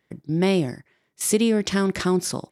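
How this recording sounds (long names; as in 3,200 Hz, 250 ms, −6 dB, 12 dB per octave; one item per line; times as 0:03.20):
background noise floor −72 dBFS
spectral slope −5.0 dB per octave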